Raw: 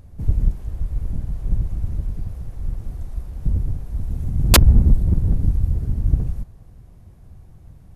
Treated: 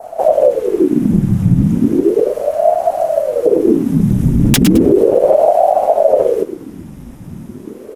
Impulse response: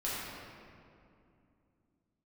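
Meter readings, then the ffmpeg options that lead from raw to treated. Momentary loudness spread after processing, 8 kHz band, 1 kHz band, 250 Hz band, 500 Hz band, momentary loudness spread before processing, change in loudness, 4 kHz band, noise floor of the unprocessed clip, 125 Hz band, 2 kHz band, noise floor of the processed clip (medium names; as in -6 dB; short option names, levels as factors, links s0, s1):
18 LU, +1.5 dB, +19.0 dB, +18.0 dB, +28.0 dB, 17 LU, +9.5 dB, +0.5 dB, -46 dBFS, +3.5 dB, +1.5 dB, -33 dBFS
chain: -filter_complex "[0:a]tiltshelf=f=940:g=-3.5,bandreject=f=4300:w=5.1,asplit=2[s0][s1];[s1]acompressor=threshold=0.0398:ratio=6,volume=0.944[s2];[s0][s2]amix=inputs=2:normalize=0,adynamicequalizer=threshold=0.00501:dfrequency=2500:dqfactor=0.76:tfrequency=2500:tqfactor=0.76:attack=5:release=100:ratio=0.375:range=2.5:mode=boostabove:tftype=bell,acrossover=split=380|3000[s3][s4][s5];[s4]acompressor=threshold=0.126:ratio=6[s6];[s3][s6][s5]amix=inputs=3:normalize=0,asoftclip=type=hard:threshold=0.631,flanger=delay=4.6:depth=4.6:regen=-29:speed=1.5:shape=sinusoidal,aecho=1:1:107|214:0.224|0.047,alimiter=level_in=6.68:limit=0.891:release=50:level=0:latency=1,aeval=exprs='val(0)*sin(2*PI*410*n/s+410*0.65/0.35*sin(2*PI*0.35*n/s))':c=same"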